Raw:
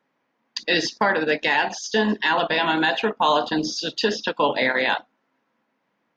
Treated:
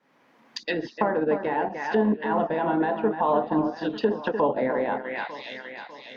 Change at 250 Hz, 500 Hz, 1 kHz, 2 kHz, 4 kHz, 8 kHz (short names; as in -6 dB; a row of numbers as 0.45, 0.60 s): +0.5 dB, -0.5 dB, -3.5 dB, -11.0 dB, -16.0 dB, n/a